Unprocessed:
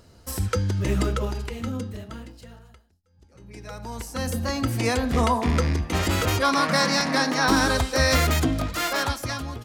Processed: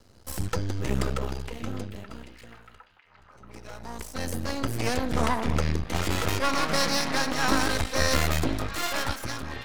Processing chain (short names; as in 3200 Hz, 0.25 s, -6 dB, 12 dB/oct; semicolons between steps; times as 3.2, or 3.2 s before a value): half-wave rectifier; delay with a stepping band-pass 0.756 s, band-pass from 3000 Hz, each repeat -0.7 oct, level -10 dB